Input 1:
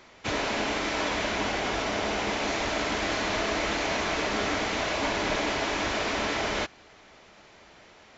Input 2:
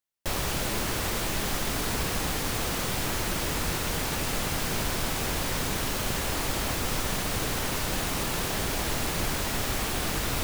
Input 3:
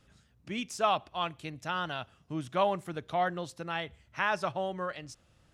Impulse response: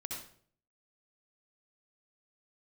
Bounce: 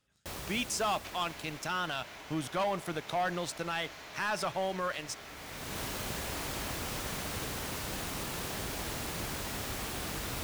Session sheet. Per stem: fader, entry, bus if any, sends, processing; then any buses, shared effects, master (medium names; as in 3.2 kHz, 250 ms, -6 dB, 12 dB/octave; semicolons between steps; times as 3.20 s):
-6.5 dB, 0.80 s, bus A, no send, compression 5:1, threshold -38 dBFS, peak gain reduction 13 dB; high-pass 710 Hz 6 dB/octave
-8.0 dB, 0.00 s, no bus, no send, high-pass 42 Hz; auto duck -19 dB, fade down 1.90 s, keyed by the third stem
-5.5 dB, 0.00 s, bus A, no send, tilt EQ +1.5 dB/octave; waveshaping leveller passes 3
bus A: 0.0 dB, peak limiter -25.5 dBFS, peak gain reduction 7 dB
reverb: none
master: none